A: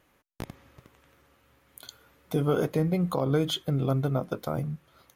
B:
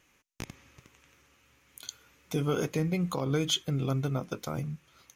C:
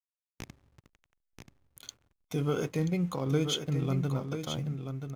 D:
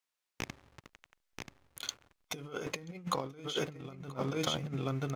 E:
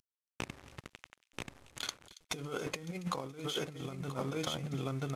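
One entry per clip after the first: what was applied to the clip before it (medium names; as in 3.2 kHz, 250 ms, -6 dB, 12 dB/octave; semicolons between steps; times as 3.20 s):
fifteen-band graphic EQ 630 Hz -5 dB, 2.5 kHz +8 dB, 6.3 kHz +12 dB; trim -3 dB
hysteresis with a dead band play -47 dBFS; harmonic-percussive split percussive -4 dB; delay 983 ms -7.5 dB
compressor with a negative ratio -36 dBFS, ratio -0.5; overdrive pedal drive 11 dB, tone 4.8 kHz, clips at -16 dBFS
CVSD coder 64 kbps; compression 3:1, threshold -45 dBFS, peak gain reduction 13.5 dB; feedback echo behind a high-pass 278 ms, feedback 35%, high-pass 2.9 kHz, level -16 dB; trim +8 dB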